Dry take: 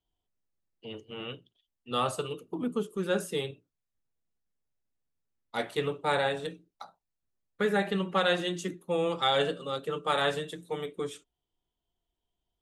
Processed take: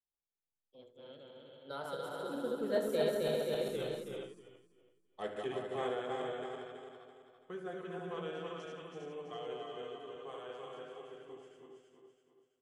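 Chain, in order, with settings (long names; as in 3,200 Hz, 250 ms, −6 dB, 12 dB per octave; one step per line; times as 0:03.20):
feedback delay that plays each chunk backwards 149 ms, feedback 66%, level −2 dB
source passing by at 0:03.76, 41 m/s, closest 6.6 metres
parametric band 520 Hz +8 dB 1.8 octaves
multi-tap delay 71/322/351/402 ms −11.5/−7/−18.5/−7 dB
level +4 dB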